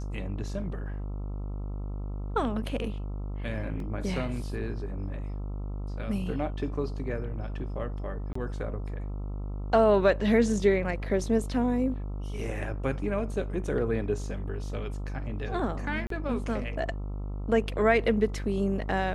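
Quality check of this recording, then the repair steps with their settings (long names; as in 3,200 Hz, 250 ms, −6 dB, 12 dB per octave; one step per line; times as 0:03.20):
mains buzz 50 Hz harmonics 27 −34 dBFS
0:03.80: drop-out 2.1 ms
0:08.33–0:08.35: drop-out 24 ms
0:16.07–0:16.10: drop-out 33 ms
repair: hum removal 50 Hz, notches 27
repair the gap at 0:03.80, 2.1 ms
repair the gap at 0:08.33, 24 ms
repair the gap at 0:16.07, 33 ms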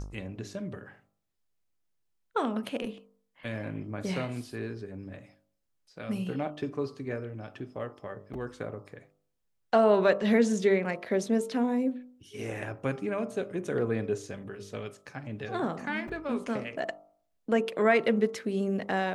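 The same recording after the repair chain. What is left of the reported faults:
none of them is left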